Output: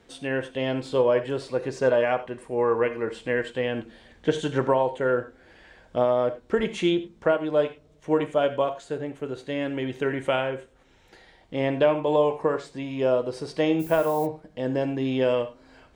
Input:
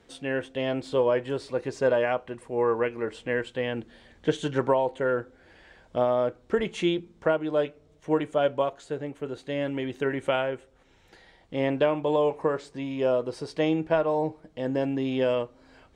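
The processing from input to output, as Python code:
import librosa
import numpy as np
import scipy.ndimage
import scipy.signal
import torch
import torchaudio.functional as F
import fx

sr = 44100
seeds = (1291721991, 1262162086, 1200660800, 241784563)

y = fx.rev_gated(x, sr, seeds[0], gate_ms=120, shape='flat', drr_db=10.0)
y = fx.dmg_noise_colour(y, sr, seeds[1], colour='violet', level_db=-45.0, at=(13.79, 14.25), fade=0.02)
y = F.gain(torch.from_numpy(y), 1.5).numpy()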